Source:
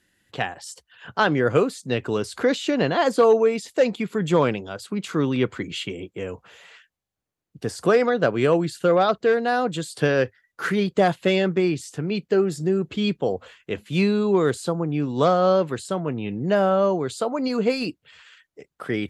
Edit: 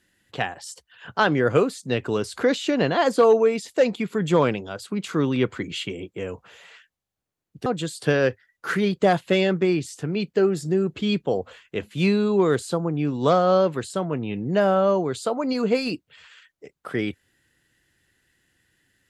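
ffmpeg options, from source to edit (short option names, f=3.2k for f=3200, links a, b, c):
-filter_complex "[0:a]asplit=2[a][b];[a]atrim=end=7.662[c];[b]atrim=start=9.608[d];[c][d]acrossfade=d=0.004:c1=hsin:c2=hsin"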